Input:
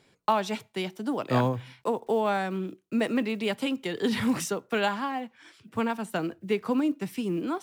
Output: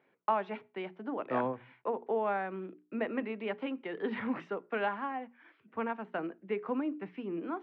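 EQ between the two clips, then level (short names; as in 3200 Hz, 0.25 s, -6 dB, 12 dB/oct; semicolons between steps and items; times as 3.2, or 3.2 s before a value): HPF 260 Hz 12 dB/oct; LPF 2300 Hz 24 dB/oct; notches 60/120/180/240/300/360/420 Hz; -5.0 dB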